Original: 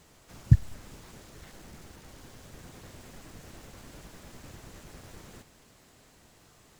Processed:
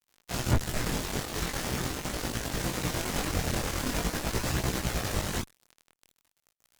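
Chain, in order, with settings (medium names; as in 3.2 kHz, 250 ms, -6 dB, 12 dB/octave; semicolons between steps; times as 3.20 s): feedback echo behind a high-pass 95 ms, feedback 77%, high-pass 1.6 kHz, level -18 dB; fuzz box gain 43 dB, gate -49 dBFS; chorus voices 2, 0.43 Hz, delay 20 ms, depth 4.6 ms; trim -3 dB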